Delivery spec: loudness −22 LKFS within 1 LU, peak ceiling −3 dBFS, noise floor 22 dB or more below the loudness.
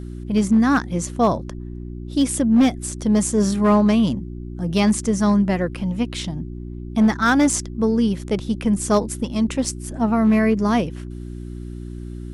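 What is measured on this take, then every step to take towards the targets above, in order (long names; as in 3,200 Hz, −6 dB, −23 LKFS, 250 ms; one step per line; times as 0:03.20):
share of clipped samples 1.4%; peaks flattened at −10.0 dBFS; mains hum 60 Hz; hum harmonics up to 360 Hz; level of the hum −30 dBFS; integrated loudness −20.0 LKFS; sample peak −10.0 dBFS; target loudness −22.0 LKFS
→ clipped peaks rebuilt −10 dBFS
hum removal 60 Hz, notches 6
level −2 dB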